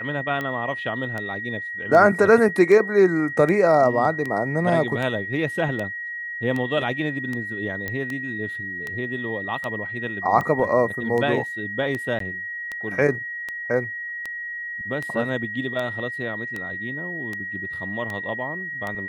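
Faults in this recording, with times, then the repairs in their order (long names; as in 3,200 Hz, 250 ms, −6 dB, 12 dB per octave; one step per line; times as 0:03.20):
scratch tick 78 rpm −16 dBFS
whistle 1,900 Hz −29 dBFS
0:07.88: click −14 dBFS
0:12.19–0:12.20: drop-out 13 ms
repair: click removal
notch filter 1,900 Hz, Q 30
repair the gap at 0:12.19, 13 ms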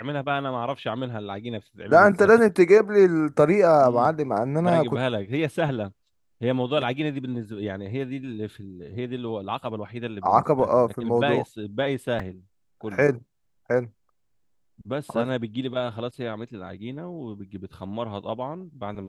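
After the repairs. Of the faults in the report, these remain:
none of them is left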